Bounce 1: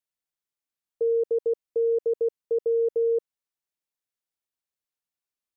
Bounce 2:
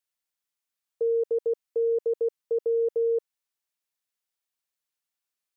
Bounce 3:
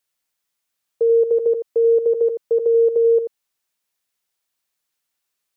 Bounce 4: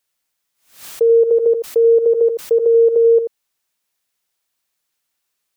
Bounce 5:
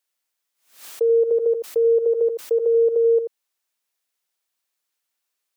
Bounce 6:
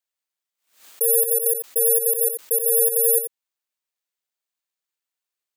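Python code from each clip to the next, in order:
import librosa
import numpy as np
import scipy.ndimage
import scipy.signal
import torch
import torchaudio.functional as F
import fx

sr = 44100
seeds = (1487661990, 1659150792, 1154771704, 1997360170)

y1 = fx.tilt_shelf(x, sr, db=-4.0, hz=650.0)
y2 = y1 + 10.0 ** (-8.5 / 20.0) * np.pad(y1, (int(85 * sr / 1000.0), 0))[:len(y1)]
y2 = F.gain(torch.from_numpy(y2), 8.5).numpy()
y3 = fx.pre_swell(y2, sr, db_per_s=130.0)
y3 = F.gain(torch.from_numpy(y3), 3.5).numpy()
y4 = scipy.signal.sosfilt(scipy.signal.butter(2, 270.0, 'highpass', fs=sr, output='sos'), y3)
y4 = F.gain(torch.from_numpy(y4), -5.0).numpy()
y5 = (np.kron(scipy.signal.resample_poly(y4, 1, 4), np.eye(4)[0]) * 4)[:len(y4)]
y5 = F.gain(torch.from_numpy(y5), -7.5).numpy()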